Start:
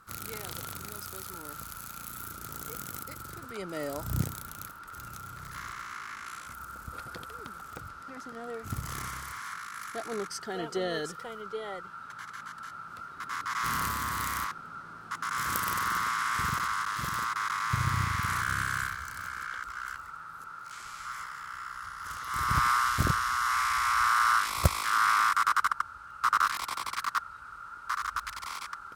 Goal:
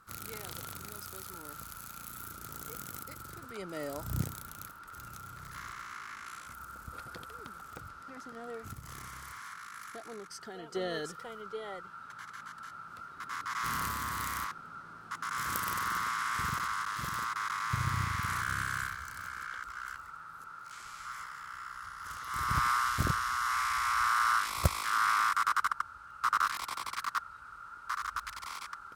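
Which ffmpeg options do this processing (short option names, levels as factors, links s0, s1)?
-filter_complex "[0:a]asettb=1/sr,asplit=3[s0][s1][s2];[s0]atrim=end=8.664[s3];[s1]atrim=start=8.66:end=10.75,asetpts=PTS-STARTPTS,afade=t=in:d=0.004:c=qsin,afade=t=out:st=2.086:d=0.004:c=qsin,acompressor=threshold=0.0126:ratio=6[s4];[s2]atrim=start=10.746[s5];[s3][s4]acrossfade=d=0.004:c1=hsin:c2=qsin[s6];[s6][s5]acrossfade=d=0.004:c1=qsin:c2=hsin,volume=0.668"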